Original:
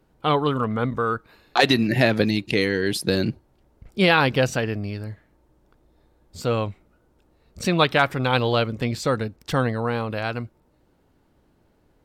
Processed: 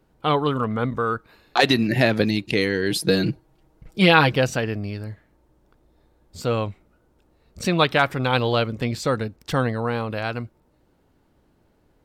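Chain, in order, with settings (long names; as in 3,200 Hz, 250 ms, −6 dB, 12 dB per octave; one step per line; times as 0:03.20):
0:02.90–0:04.32: comb filter 6.3 ms, depth 72%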